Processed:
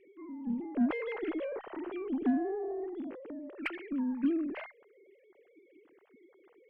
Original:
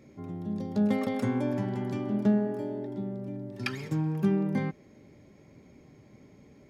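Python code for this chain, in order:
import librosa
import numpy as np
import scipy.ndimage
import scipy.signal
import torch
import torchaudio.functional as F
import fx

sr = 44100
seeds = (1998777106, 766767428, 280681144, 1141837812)

y = fx.sine_speech(x, sr)
y = fx.cheby_harmonics(y, sr, harmonics=(8,), levels_db=(-34,), full_scale_db=-14.0)
y = y * librosa.db_to_amplitude(-5.0)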